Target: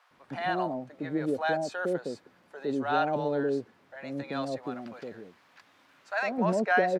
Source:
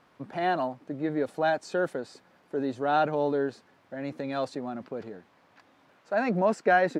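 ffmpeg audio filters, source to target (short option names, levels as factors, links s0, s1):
-filter_complex "[0:a]asettb=1/sr,asplit=3[s0][s1][s2];[s0]atrim=end=4.634[s3];[s1]atrim=start=4.63:end=6.27,asetpts=PTS-STARTPTS,afade=t=in:d=0.004:c=qsin,afade=t=out:st=1.636:d=0.004:c=qsin,tiltshelf=f=850:g=-5[s4];[s2]atrim=start=6.266[s5];[s3][s4]acrossfade=d=0.004:c1=hsin:c2=qsin[s6];[s6][s5]acrossfade=d=0.004:c1=qsin:c2=hsin,acrossover=split=650[s7][s8];[s7]adelay=110[s9];[s9][s8]amix=inputs=2:normalize=0"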